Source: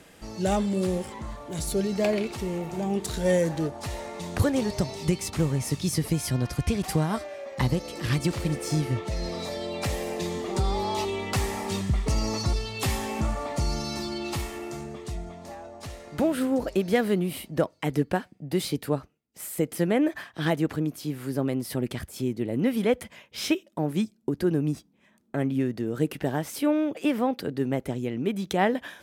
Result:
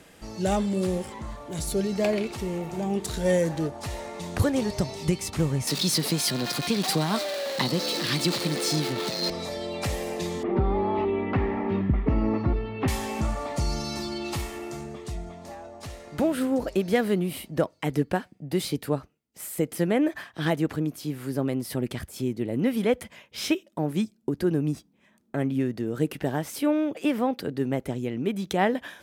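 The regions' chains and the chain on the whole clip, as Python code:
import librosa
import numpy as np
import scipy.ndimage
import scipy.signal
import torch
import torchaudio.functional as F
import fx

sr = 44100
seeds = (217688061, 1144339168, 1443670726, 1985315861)

y = fx.chain(x, sr, fx.zero_step(step_db=-29.0),
    fx.highpass(hz=170.0, slope=24),
    fx.peak_eq(hz=4100.0, db=11.0, octaves=0.56), at=(5.67, 9.3))
y = fx.chain(y, sr, fx.lowpass(hz=2300.0, slope=24),
    fx.peak_eq(hz=280.0, db=10.0, octaves=0.89), at=(10.43, 12.88))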